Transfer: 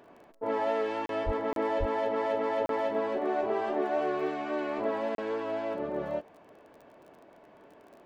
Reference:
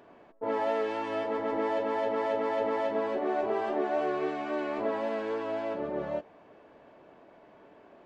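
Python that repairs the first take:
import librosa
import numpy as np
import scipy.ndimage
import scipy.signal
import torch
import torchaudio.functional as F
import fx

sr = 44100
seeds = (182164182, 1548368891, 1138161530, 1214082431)

y = fx.fix_declick_ar(x, sr, threshold=6.5)
y = fx.highpass(y, sr, hz=140.0, slope=24, at=(1.25, 1.37), fade=0.02)
y = fx.highpass(y, sr, hz=140.0, slope=24, at=(1.79, 1.91), fade=0.02)
y = fx.fix_interpolate(y, sr, at_s=(1.06, 1.53, 2.66, 5.15), length_ms=32.0)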